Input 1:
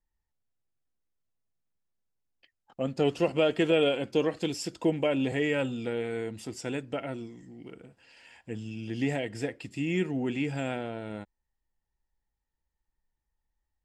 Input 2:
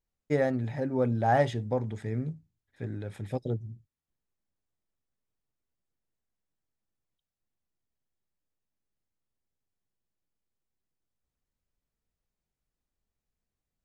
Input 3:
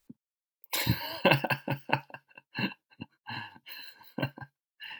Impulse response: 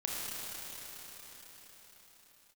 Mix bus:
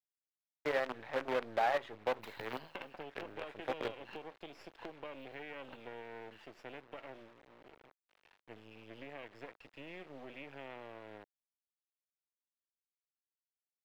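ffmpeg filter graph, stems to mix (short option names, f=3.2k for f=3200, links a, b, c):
-filter_complex "[0:a]acontrast=49,lowpass=f=6.6k:w=0.5412,lowpass=f=6.6k:w=1.3066,volume=-13dB[a];[1:a]highpass=f=590:p=1,acompressor=threshold=-32dB:ratio=5,aeval=exprs='val(0)+0.000251*(sin(2*PI*50*n/s)+sin(2*PI*2*50*n/s)/2+sin(2*PI*3*50*n/s)/3+sin(2*PI*4*50*n/s)/4+sin(2*PI*5*50*n/s)/5)':c=same,adelay=350,volume=3dB[b];[2:a]adelay=1500,volume=-12dB[c];[a][c]amix=inputs=2:normalize=0,highshelf=f=7.2k:g=10,acompressor=threshold=-37dB:ratio=8,volume=0dB[d];[b][d]amix=inputs=2:normalize=0,acrusher=bits=6:dc=4:mix=0:aa=0.000001,acrossover=split=350 3400:gain=0.224 1 0.0708[e][f][g];[e][f][g]amix=inputs=3:normalize=0"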